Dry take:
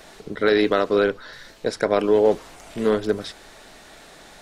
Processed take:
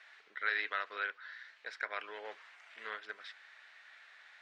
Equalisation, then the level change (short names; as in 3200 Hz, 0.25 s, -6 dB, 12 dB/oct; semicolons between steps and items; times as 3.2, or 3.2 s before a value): ladder band-pass 2200 Hz, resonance 40%; high shelf 3400 Hz -8 dB; +3.5 dB